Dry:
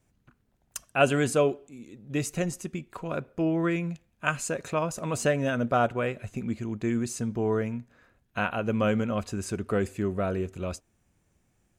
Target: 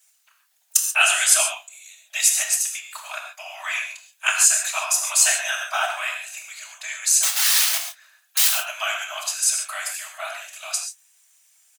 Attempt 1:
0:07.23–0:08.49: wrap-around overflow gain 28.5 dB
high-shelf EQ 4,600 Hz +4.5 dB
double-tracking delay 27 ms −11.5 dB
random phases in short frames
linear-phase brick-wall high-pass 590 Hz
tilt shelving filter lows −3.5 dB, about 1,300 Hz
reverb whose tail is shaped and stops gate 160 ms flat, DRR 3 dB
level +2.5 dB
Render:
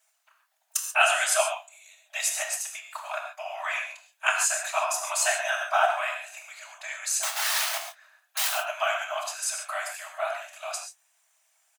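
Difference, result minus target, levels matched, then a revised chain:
1,000 Hz band +9.5 dB
0:07.23–0:08.49: wrap-around overflow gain 28.5 dB
high-shelf EQ 4,600 Hz +4.5 dB
double-tracking delay 27 ms −11.5 dB
random phases in short frames
linear-phase brick-wall high-pass 590 Hz
tilt shelving filter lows −14.5 dB, about 1,300 Hz
reverb whose tail is shaped and stops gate 160 ms flat, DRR 3 dB
level +2.5 dB

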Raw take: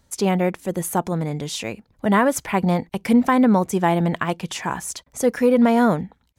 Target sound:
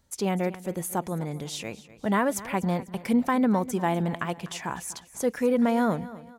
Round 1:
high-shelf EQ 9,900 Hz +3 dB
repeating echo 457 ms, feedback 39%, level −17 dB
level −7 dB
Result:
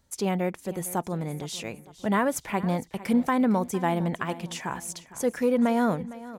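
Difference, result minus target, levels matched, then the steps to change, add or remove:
echo 209 ms late
change: repeating echo 248 ms, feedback 39%, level −17 dB

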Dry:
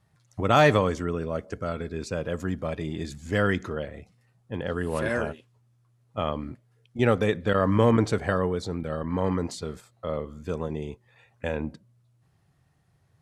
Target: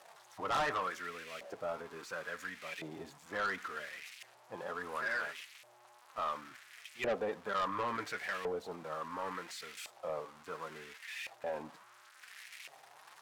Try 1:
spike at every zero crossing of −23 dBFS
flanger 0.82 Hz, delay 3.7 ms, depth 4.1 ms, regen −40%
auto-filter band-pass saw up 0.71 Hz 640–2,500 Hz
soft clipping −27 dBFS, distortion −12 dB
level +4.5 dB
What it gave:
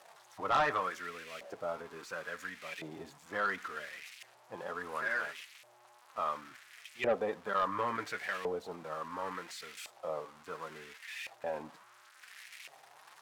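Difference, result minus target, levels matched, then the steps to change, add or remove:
soft clipping: distortion −5 dB
change: soft clipping −33.5 dBFS, distortion −7 dB

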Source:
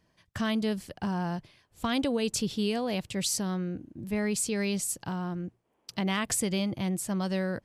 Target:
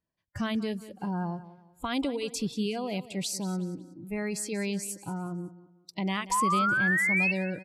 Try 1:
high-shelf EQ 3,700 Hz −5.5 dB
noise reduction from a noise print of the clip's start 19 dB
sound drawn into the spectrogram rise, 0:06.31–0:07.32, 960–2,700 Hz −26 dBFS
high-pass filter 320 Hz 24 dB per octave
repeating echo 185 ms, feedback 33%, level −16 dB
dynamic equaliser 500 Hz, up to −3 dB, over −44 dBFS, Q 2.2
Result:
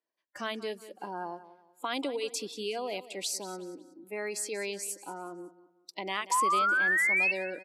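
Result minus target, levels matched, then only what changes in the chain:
250 Hz band −11.0 dB
remove: high-pass filter 320 Hz 24 dB per octave

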